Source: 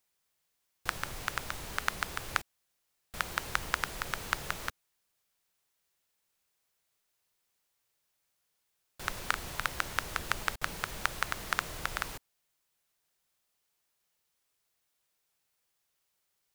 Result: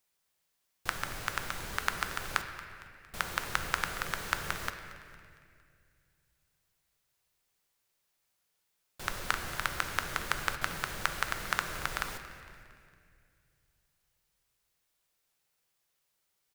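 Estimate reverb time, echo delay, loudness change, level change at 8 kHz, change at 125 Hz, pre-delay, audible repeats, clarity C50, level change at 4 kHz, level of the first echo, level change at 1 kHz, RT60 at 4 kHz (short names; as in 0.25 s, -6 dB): 2.2 s, 0.229 s, +0.5 dB, +0.5 dB, +1.0 dB, 5 ms, 3, 7.5 dB, +0.5 dB, -17.5 dB, +1.0 dB, 1.8 s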